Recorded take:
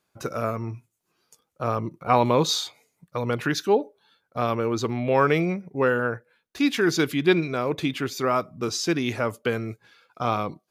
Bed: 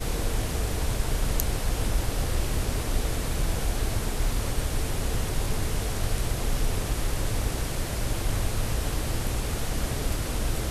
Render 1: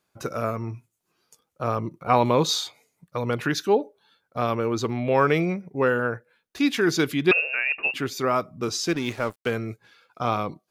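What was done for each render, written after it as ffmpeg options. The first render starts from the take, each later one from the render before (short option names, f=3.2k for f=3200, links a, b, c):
-filter_complex "[0:a]asettb=1/sr,asplit=3[a][b][c];[a]atrim=end=7.314[d];[b]atrim=start=7.31:end=7.94,asetpts=PTS-STARTPTS,afade=t=in:d=0.004:c=qsin,afade=t=out:st=0.626:d=0.004:c=qsin,lowpass=f=2.5k:t=q:w=0.5098,lowpass=f=2.5k:t=q:w=0.6013,lowpass=f=2.5k:t=q:w=0.9,lowpass=f=2.5k:t=q:w=2.563,afreqshift=-2900[e];[c]atrim=start=7.936[f];[d][e]acrossfade=d=0.004:c1=hsin:c2=qsin[g];[g][f]acrossfade=d=0.004:c1=qsin:c2=hsin,asettb=1/sr,asplit=3[h][i][j];[h]atrim=end=8.884[k];[i]atrim=start=8.88:end=9.51,asetpts=PTS-STARTPTS,afade=t=in:d=0.004:c=qsin,afade=t=out:st=0.626:d=0.004:c=qsin,aeval=exprs='sgn(val(0))*max(abs(val(0))-0.0133,0)':c=same[l];[j]atrim=start=9.506[m];[k][l]acrossfade=d=0.004:c1=hsin:c2=qsin[n];[n][m]acrossfade=d=0.004:c1=qsin:c2=hsin"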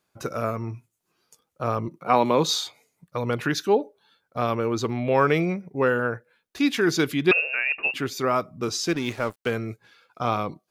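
-filter_complex "[0:a]asettb=1/sr,asplit=3[a][b][c];[a]atrim=end=1.884[d];[b]atrim=start=1.88:end=2.59,asetpts=PTS-STARTPTS,afade=t=in:d=0.004:c=qsin,afade=t=out:st=0.706:d=0.004:c=qsin,highpass=f=150:w=0.5412,highpass=f=150:w=1.3066[e];[c]atrim=start=2.586[f];[d][e]acrossfade=d=0.004:c1=hsin:c2=qsin[g];[g][f]acrossfade=d=0.004:c1=qsin:c2=hsin"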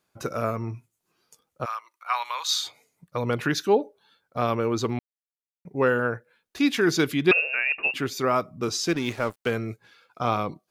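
-filter_complex "[0:a]asplit=3[a][b][c];[a]afade=t=out:st=1.64:d=0.02[d];[b]highpass=f=1.1k:w=0.5412,highpass=f=1.1k:w=1.3066,afade=t=in:st=1.64:d=0.02,afade=t=out:st=2.62:d=0.02[e];[c]afade=t=in:st=2.62:d=0.02[f];[d][e][f]amix=inputs=3:normalize=0,asplit=3[g][h][i];[g]atrim=end=4.99,asetpts=PTS-STARTPTS,afade=t=out:st=4.986:d=0.004:c=hsin[j];[h]atrim=start=4.99:end=5.65,asetpts=PTS-STARTPTS,volume=0[k];[i]atrim=start=5.65,asetpts=PTS-STARTPTS,afade=t=in:d=0.004:c=hsin[l];[j][k][l]concat=n=3:v=0:a=1"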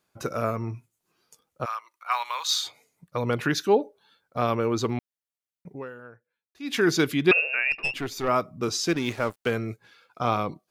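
-filter_complex "[0:a]asettb=1/sr,asplit=3[a][b][c];[a]atrim=end=2.114[d];[b]atrim=start=2.11:end=2.63,asetpts=PTS-STARTPTS,afade=t=in:d=0.004:c=qsin,afade=t=out:st=0.516:d=0.004:c=qsin,acrusher=bits=8:mode=log:mix=0:aa=0.000001[e];[c]atrim=start=2.626[f];[d][e]acrossfade=d=0.004:c1=hsin:c2=qsin[g];[g][f]acrossfade=d=0.004:c1=qsin:c2=hsin,asplit=3[h][i][j];[h]afade=t=out:st=7.71:d=0.02[k];[i]aeval=exprs='(tanh(8.91*val(0)+0.55)-tanh(0.55))/8.91':c=same,afade=t=in:st=7.71:d=0.02,afade=t=out:st=8.27:d=0.02[l];[j]afade=t=in:st=8.27:d=0.02[m];[k][l][m]amix=inputs=3:normalize=0,asplit=3[n][o][p];[n]atrim=end=6.18,asetpts=PTS-STARTPTS,afade=t=out:st=5.73:d=0.45:c=exp:silence=0.1[q];[o]atrim=start=6.18:end=6.28,asetpts=PTS-STARTPTS,volume=-20dB[r];[p]atrim=start=6.28,asetpts=PTS-STARTPTS,afade=t=in:d=0.45:c=exp:silence=0.1[s];[q][r][s]concat=n=3:v=0:a=1"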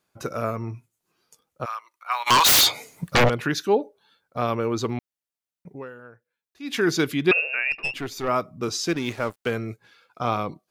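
-filter_complex "[0:a]asplit=3[a][b][c];[a]afade=t=out:st=2.26:d=0.02[d];[b]aeval=exprs='0.237*sin(PI/2*7.08*val(0)/0.237)':c=same,afade=t=in:st=2.26:d=0.02,afade=t=out:st=3.28:d=0.02[e];[c]afade=t=in:st=3.28:d=0.02[f];[d][e][f]amix=inputs=3:normalize=0"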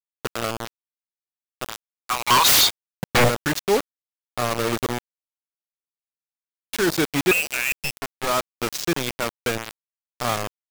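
-af "acrusher=bits=3:mix=0:aa=0.000001"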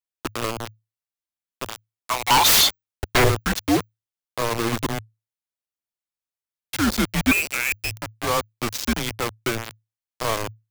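-af "afreqshift=-110"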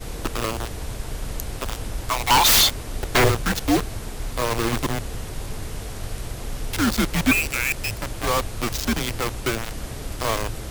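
-filter_complex "[1:a]volume=-4dB[a];[0:a][a]amix=inputs=2:normalize=0"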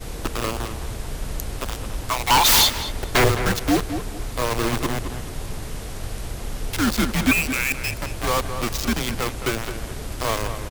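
-filter_complex "[0:a]asplit=2[a][b];[b]adelay=214,lowpass=f=2.7k:p=1,volume=-9dB,asplit=2[c][d];[d]adelay=214,lowpass=f=2.7k:p=1,volume=0.28,asplit=2[e][f];[f]adelay=214,lowpass=f=2.7k:p=1,volume=0.28[g];[a][c][e][g]amix=inputs=4:normalize=0"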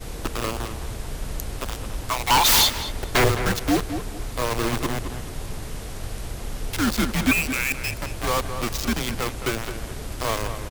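-af "volume=-1.5dB"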